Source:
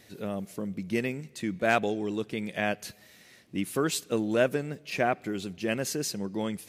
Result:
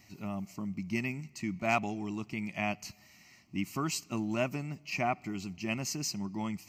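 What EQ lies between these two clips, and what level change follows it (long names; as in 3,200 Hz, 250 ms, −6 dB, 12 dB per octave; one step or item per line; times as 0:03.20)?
phaser with its sweep stopped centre 2,400 Hz, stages 8
0.0 dB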